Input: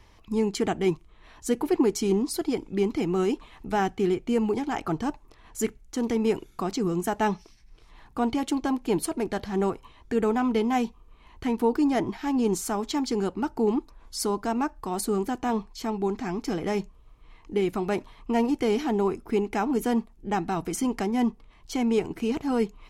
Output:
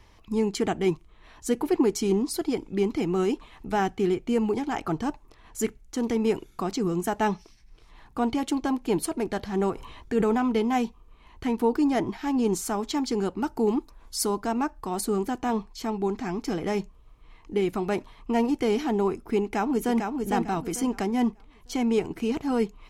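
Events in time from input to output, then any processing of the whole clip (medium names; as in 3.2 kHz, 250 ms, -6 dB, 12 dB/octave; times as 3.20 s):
9.73–10.38 s: decay stretcher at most 28 dB/s
13.40–14.38 s: treble shelf 6.2 kHz -> 9.1 kHz +7 dB
19.43–19.97 s: echo throw 450 ms, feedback 30%, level -4.5 dB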